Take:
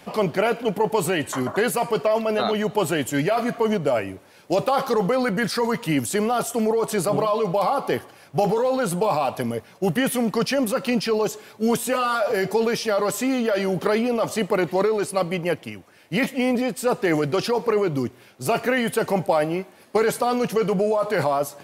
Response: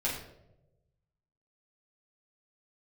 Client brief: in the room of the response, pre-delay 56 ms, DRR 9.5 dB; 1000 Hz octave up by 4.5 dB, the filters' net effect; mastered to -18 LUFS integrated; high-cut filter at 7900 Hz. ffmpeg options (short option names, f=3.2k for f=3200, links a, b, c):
-filter_complex "[0:a]lowpass=7.9k,equalizer=f=1k:t=o:g=6,asplit=2[a][b];[1:a]atrim=start_sample=2205,adelay=56[c];[b][c]afir=irnorm=-1:irlink=0,volume=-16dB[d];[a][d]amix=inputs=2:normalize=0,volume=2.5dB"